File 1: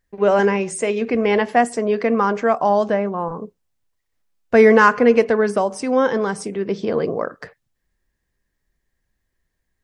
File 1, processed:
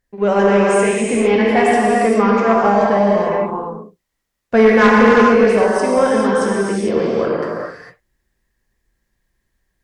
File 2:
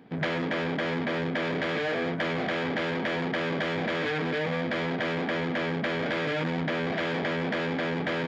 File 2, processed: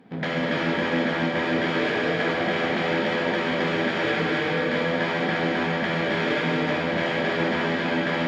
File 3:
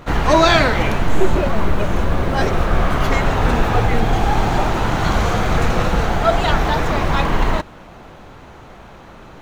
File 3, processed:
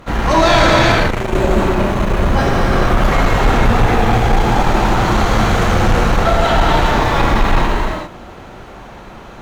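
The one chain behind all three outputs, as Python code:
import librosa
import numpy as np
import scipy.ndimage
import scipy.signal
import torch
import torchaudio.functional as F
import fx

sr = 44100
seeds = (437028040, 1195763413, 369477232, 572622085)

y = fx.rev_gated(x, sr, seeds[0], gate_ms=480, shape='flat', drr_db=-4.5)
y = fx.cheby_harmonics(y, sr, harmonics=(5, 8), levels_db=(-13, -31), full_scale_db=6.5)
y = y * 10.0 ** (-7.0 / 20.0)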